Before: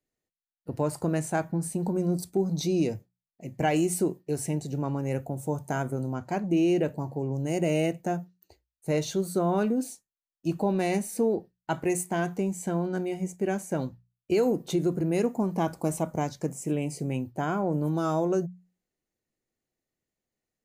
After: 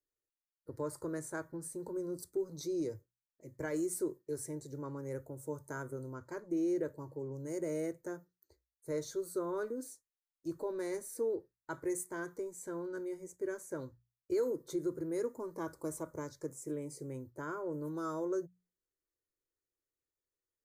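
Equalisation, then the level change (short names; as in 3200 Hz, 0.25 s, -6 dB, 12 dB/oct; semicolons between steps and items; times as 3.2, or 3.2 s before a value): fixed phaser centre 740 Hz, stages 6; -7.5 dB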